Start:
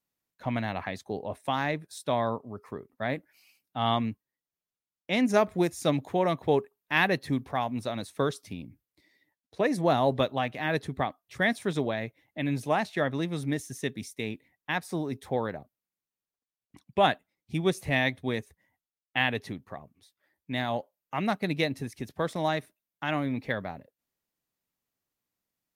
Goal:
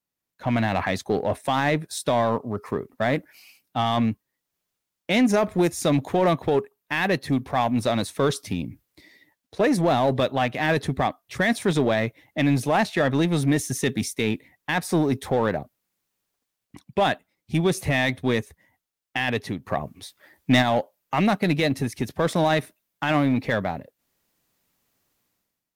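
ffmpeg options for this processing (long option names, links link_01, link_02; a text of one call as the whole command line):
ffmpeg -i in.wav -filter_complex "[0:a]dynaudnorm=framelen=140:gausssize=7:maxgain=16dB,asplit=2[link_01][link_02];[link_02]volume=19dB,asoftclip=hard,volume=-19dB,volume=-3.5dB[link_03];[link_01][link_03]amix=inputs=2:normalize=0,alimiter=limit=-6.5dB:level=0:latency=1:release=12,asplit=3[link_04][link_05][link_06];[link_04]afade=type=out:start_time=19.64:duration=0.02[link_07];[link_05]acontrast=47,afade=type=in:start_time=19.64:duration=0.02,afade=type=out:start_time=20.61:duration=0.02[link_08];[link_06]afade=type=in:start_time=20.61:duration=0.02[link_09];[link_07][link_08][link_09]amix=inputs=3:normalize=0,volume=-5.5dB" out.wav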